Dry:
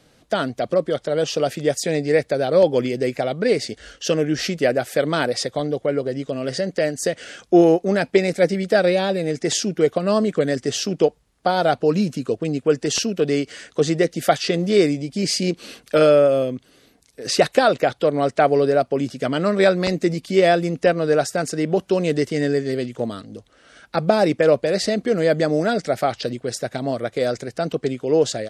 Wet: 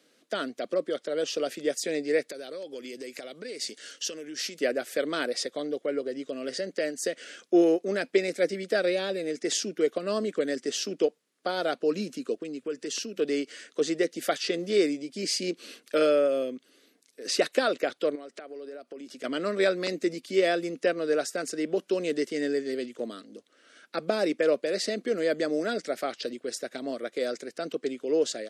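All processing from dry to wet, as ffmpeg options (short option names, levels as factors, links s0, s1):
-filter_complex "[0:a]asettb=1/sr,asplit=3[s0][s1][s2];[s0]atrim=end=2.294[s3];[s1]atrim=start=2.29:end=4.59,asetpts=PTS-STARTPTS,afade=t=in:d=0.004:c=qsin,afade=t=out:st=2.296:d=0.004:c=qsin,acompressor=threshold=0.0355:ratio=5:attack=3.2:release=140:knee=1:detection=peak,highshelf=f=3200:g=11[s4];[s2]atrim=start=4.586[s5];[s3][s4]acrossfade=d=0.004:c1=hsin:c2=qsin[s6];[s6][s5]acrossfade=d=0.004:c1=qsin:c2=hsin,asettb=1/sr,asplit=3[s7][s8][s9];[s7]atrim=end=12.424[s10];[s8]atrim=start=12.42:end=13.18,asetpts=PTS-STARTPTS,afade=t=in:d=0.004:c=qsin,afade=t=out:st=0.756:d=0.004:c=qsin,equalizer=f=710:w=5.4:g=-7.5,bandreject=f=60:t=h:w=6,bandreject=f=120:t=h:w=6,bandreject=f=180:t=h:w=6,acompressor=threshold=0.0501:ratio=2:attack=3.2:release=140:knee=1:detection=peak[s11];[s9]atrim=start=13.176[s12];[s10][s11]acrossfade=d=0.004:c1=hsin:c2=qsin[s13];[s13][s12]acrossfade=d=0.004:c1=qsin:c2=hsin,asettb=1/sr,asplit=3[s14][s15][s16];[s14]atrim=end=18.154[s17];[s15]atrim=start=18.15:end=19.24,asetpts=PTS-STARTPTS,afade=t=in:d=0.004:c=qsin,afade=t=out:st=1.086:d=0.004:c=qsin,highpass=180,acompressor=threshold=0.0316:ratio=8:attack=3.2:release=140:knee=1:detection=peak[s18];[s16]atrim=start=19.236[s19];[s17][s18]acrossfade=d=0.004:c1=hsin:c2=qsin[s20];[s20][s19]acrossfade=d=0.004:c1=qsin:c2=hsin,highpass=f=250:w=0.5412,highpass=f=250:w=1.3066,equalizer=f=830:w=2.1:g=-10,volume=0.501"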